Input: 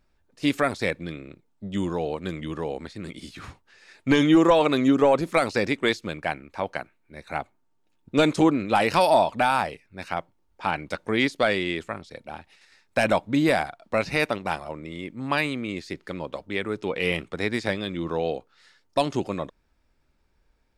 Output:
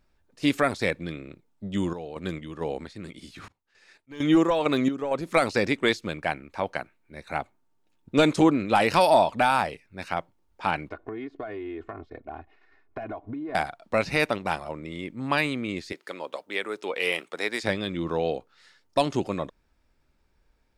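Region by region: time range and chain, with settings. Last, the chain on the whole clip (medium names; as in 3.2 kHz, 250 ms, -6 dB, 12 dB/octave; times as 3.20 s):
1.93–5.31 s: de-esser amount 65% + slow attack 233 ms + random-step tremolo 4.4 Hz, depth 80%
10.89–13.55 s: low-pass 1.2 kHz + comb 2.8 ms, depth 100% + compression 16:1, threshold -31 dBFS
15.92–17.63 s: high-pass 430 Hz + treble shelf 8.5 kHz +7.5 dB
whole clip: none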